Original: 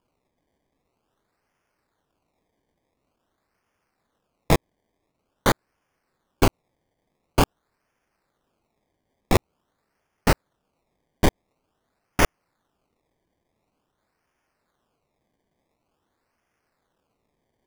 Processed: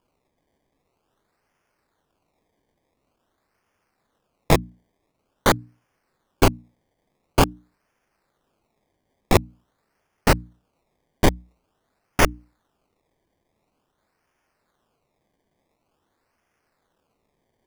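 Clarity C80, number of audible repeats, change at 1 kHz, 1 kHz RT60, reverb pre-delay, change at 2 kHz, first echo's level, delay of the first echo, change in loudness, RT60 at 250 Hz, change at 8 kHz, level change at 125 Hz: no reverb, no echo, +2.5 dB, no reverb, no reverb, +2.5 dB, no echo, no echo, +2.5 dB, no reverb, +2.5 dB, +2.0 dB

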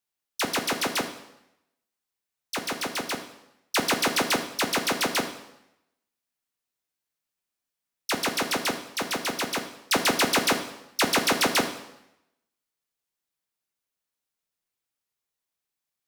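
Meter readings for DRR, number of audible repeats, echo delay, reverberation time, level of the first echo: 6.0 dB, no echo, no echo, 0.85 s, no echo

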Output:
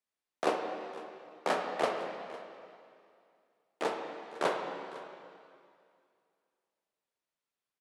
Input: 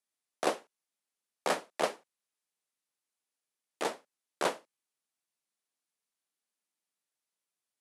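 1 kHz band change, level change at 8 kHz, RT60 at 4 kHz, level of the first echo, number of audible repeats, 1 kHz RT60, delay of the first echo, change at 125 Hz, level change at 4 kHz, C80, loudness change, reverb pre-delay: +2.0 dB, -7.5 dB, 2.2 s, -18.0 dB, 1, 2.4 s, 505 ms, +1.5 dB, -2.0 dB, 4.5 dB, -1.0 dB, 5 ms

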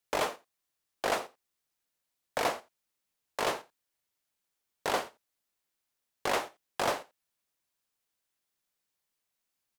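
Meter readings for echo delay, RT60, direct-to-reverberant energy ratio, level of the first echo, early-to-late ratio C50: 85 ms, no reverb, no reverb, -20.0 dB, no reverb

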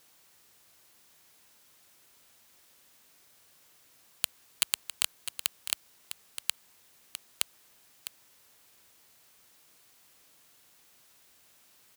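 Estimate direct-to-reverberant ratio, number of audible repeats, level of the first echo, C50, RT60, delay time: no reverb, 1, -10.5 dB, no reverb, no reverb, 655 ms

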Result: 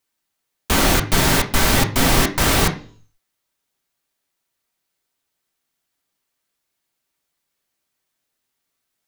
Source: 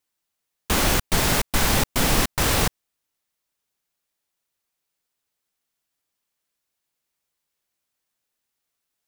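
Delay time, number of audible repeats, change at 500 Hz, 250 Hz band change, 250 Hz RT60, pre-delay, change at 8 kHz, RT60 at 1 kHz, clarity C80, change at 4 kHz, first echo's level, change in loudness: no echo, no echo, +4.5 dB, +6.0 dB, 0.55 s, 3 ms, +3.0 dB, 0.45 s, 17.5 dB, +4.0 dB, no echo, +4.0 dB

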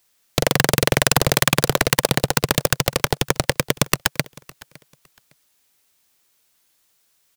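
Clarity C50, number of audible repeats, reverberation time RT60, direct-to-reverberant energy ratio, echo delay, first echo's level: no reverb, 1, no reverb, no reverb, 559 ms, -23.0 dB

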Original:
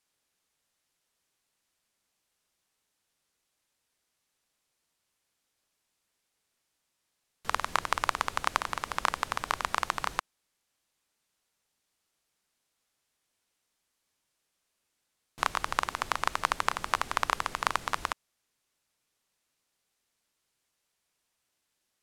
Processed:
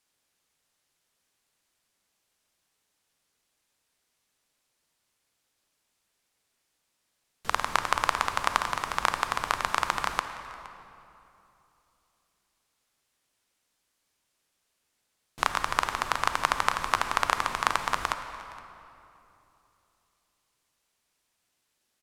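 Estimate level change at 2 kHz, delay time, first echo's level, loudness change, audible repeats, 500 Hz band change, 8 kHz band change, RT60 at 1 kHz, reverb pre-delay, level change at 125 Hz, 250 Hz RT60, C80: +3.0 dB, 467 ms, -20.5 dB, +3.0 dB, 1, +3.0 dB, +3.0 dB, 2.8 s, 30 ms, +3.0 dB, 3.2 s, 9.0 dB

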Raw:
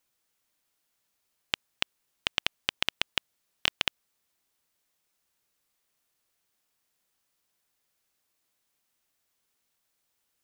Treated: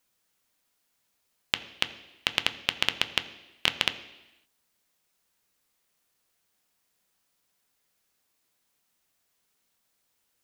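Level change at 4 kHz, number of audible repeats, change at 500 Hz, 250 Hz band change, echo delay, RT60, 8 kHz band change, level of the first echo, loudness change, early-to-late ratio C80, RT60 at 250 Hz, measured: +2.5 dB, no echo, +3.5 dB, +4.0 dB, no echo, 1.0 s, +2.5 dB, no echo, +3.0 dB, 15.5 dB, 1.0 s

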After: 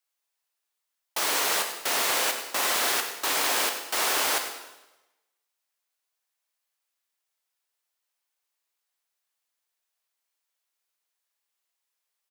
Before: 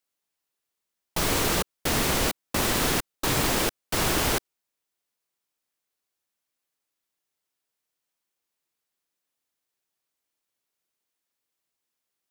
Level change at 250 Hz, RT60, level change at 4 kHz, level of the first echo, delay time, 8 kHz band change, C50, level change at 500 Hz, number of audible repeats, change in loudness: -13.0 dB, 1.0 s, +1.5 dB, -12.5 dB, 101 ms, +1.5 dB, 6.0 dB, -4.0 dB, 1, +0.5 dB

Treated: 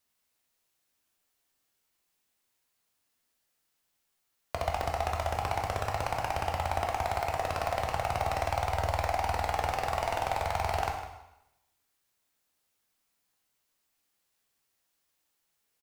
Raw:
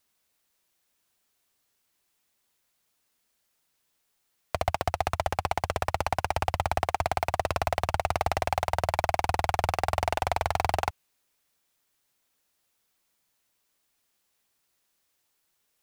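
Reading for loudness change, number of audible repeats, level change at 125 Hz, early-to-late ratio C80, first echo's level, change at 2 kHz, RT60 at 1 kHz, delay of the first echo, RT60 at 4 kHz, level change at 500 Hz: -2.5 dB, 1, -2.5 dB, 6.5 dB, -12.0 dB, -3.0 dB, 0.90 s, 155 ms, 0.85 s, -2.5 dB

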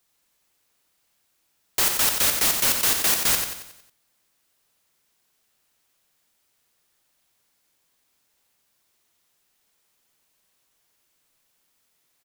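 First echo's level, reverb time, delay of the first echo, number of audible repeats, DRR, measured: -6.0 dB, no reverb, 91 ms, 5, no reverb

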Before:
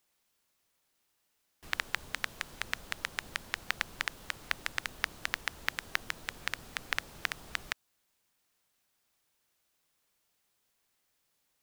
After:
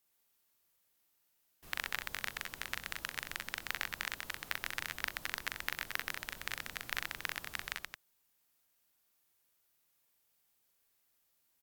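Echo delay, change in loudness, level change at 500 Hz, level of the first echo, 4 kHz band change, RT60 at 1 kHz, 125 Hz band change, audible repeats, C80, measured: 41 ms, -3.0 dB, -3.5 dB, -3.5 dB, -3.0 dB, no reverb, -3.5 dB, 3, no reverb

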